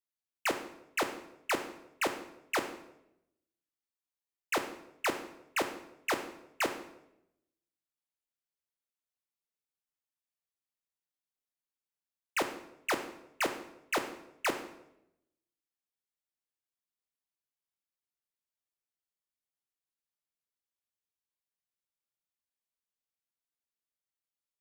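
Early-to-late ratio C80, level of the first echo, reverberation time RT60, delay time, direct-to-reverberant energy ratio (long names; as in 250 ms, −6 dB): 12.5 dB, no echo audible, 0.85 s, no echo audible, 6.0 dB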